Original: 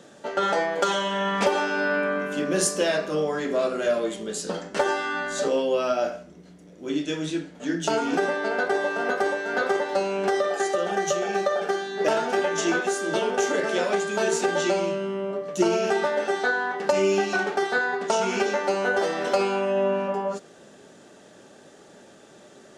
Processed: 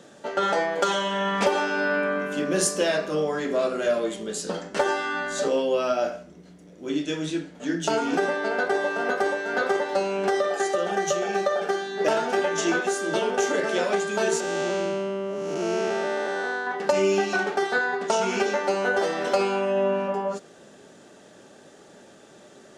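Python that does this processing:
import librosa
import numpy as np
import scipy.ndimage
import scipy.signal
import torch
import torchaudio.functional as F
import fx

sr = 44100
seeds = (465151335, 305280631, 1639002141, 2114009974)

y = fx.spec_blur(x, sr, span_ms=357.0, at=(14.4, 16.67))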